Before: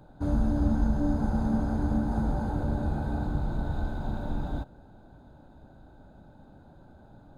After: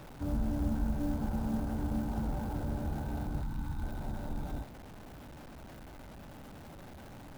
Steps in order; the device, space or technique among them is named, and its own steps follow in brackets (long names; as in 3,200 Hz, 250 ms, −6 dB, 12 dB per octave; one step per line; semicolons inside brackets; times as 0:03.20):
0:03.43–0:03.83: elliptic band-stop filter 310–840 Hz
early CD player with a faulty converter (converter with a step at zero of −37.5 dBFS; converter with an unsteady clock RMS 0.028 ms)
level −7.5 dB